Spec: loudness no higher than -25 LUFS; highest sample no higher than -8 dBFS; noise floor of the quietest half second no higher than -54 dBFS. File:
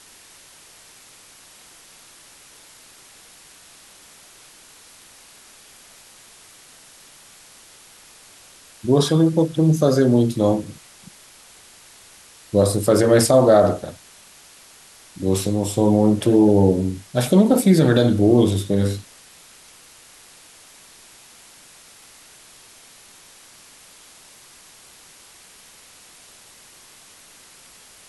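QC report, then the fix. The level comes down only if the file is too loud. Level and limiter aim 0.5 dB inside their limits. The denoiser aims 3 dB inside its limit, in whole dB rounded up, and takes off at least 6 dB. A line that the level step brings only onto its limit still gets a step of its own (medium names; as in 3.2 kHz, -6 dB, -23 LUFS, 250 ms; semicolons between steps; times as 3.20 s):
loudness -17.5 LUFS: fail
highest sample -4.5 dBFS: fail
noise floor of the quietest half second -48 dBFS: fail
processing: trim -8 dB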